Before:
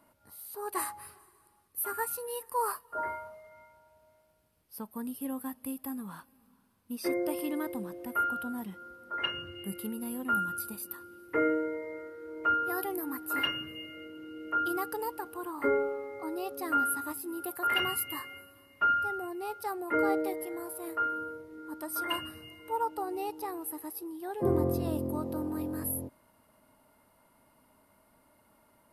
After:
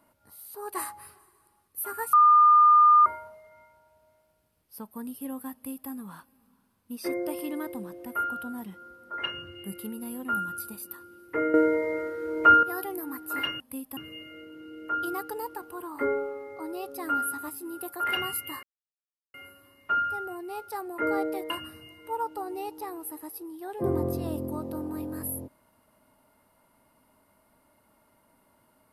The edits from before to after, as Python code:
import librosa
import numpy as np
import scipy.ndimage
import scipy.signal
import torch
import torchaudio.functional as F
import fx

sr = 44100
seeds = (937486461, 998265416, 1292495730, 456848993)

y = fx.edit(x, sr, fx.bleep(start_s=2.13, length_s=0.93, hz=1210.0, db=-13.5),
    fx.duplicate(start_s=5.53, length_s=0.37, to_s=13.6),
    fx.clip_gain(start_s=11.54, length_s=1.09, db=11.0),
    fx.insert_silence(at_s=18.26, length_s=0.71),
    fx.cut(start_s=20.42, length_s=1.69), tone=tone)